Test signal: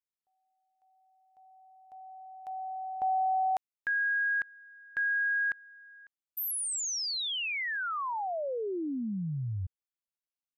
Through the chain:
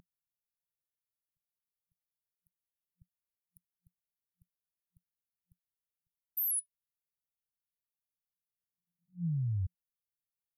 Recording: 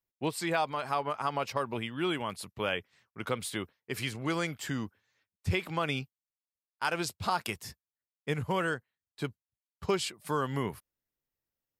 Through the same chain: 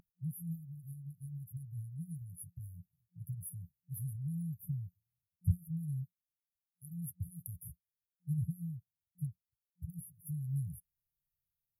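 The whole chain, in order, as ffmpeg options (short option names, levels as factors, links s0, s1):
-af "aeval=exprs='val(0)+0.0178*sin(2*PI*530*n/s)':c=same,afftfilt=real='re*(1-between(b*sr/4096,180,9900))':imag='im*(1-between(b*sr/4096,180,9900))':win_size=4096:overlap=0.75,volume=1.19"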